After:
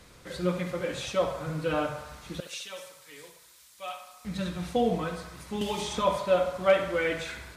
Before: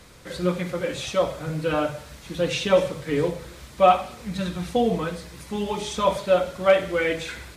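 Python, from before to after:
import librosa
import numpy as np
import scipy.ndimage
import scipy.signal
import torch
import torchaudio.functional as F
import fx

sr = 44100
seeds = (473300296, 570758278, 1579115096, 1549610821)

p1 = fx.pre_emphasis(x, sr, coefficient=0.97, at=(2.4, 4.25))
p2 = p1 + fx.echo_banded(p1, sr, ms=69, feedback_pct=72, hz=1100.0, wet_db=-8, dry=0)
p3 = fx.band_squash(p2, sr, depth_pct=100, at=(5.61, 6.02))
y = p3 * librosa.db_to_amplitude(-4.5)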